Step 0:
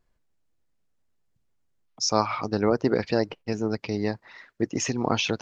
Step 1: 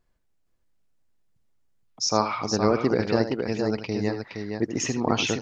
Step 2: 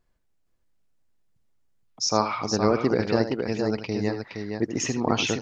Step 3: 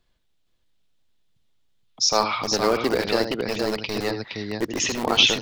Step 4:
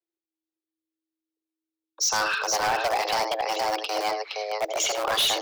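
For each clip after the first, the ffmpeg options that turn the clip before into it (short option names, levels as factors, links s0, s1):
-af "aecho=1:1:79|467:0.282|0.531"
-af anull
-filter_complex "[0:a]equalizer=f=3500:w=1.6:g=13,acrossover=split=240|1800[s0][s1][s2];[s0]aeval=exprs='(mod(29.9*val(0)+1,2)-1)/29.9':c=same[s3];[s3][s1][s2]amix=inputs=3:normalize=0,volume=1.19"
-af "afreqshift=320,agate=range=0.0447:threshold=0.00251:ratio=16:detection=peak,asoftclip=type=hard:threshold=0.1"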